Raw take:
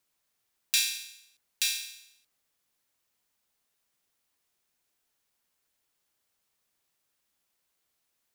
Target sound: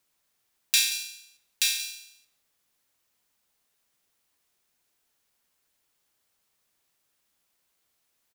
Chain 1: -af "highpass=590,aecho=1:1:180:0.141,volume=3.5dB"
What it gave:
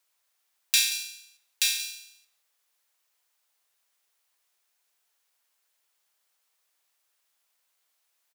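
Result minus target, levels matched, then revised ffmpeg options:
500 Hz band -4.0 dB
-af "aecho=1:1:180:0.141,volume=3.5dB"

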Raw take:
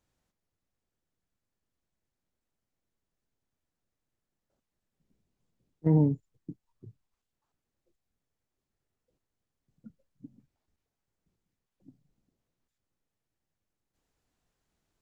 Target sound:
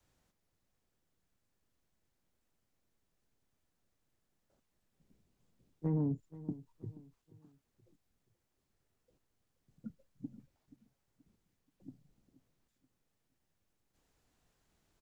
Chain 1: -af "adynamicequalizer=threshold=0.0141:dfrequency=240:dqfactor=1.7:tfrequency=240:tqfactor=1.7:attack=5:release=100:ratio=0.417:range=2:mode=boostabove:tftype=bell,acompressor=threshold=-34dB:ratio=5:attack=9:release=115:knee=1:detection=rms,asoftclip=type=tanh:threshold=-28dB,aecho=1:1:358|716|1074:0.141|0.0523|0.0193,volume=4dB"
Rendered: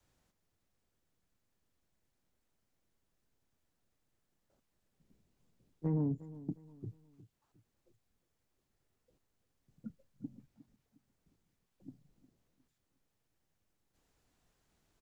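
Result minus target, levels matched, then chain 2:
echo 0.121 s early
-af "adynamicequalizer=threshold=0.0141:dfrequency=240:dqfactor=1.7:tfrequency=240:tqfactor=1.7:attack=5:release=100:ratio=0.417:range=2:mode=boostabove:tftype=bell,acompressor=threshold=-34dB:ratio=5:attack=9:release=115:knee=1:detection=rms,asoftclip=type=tanh:threshold=-28dB,aecho=1:1:479|958|1437:0.141|0.0523|0.0193,volume=4dB"

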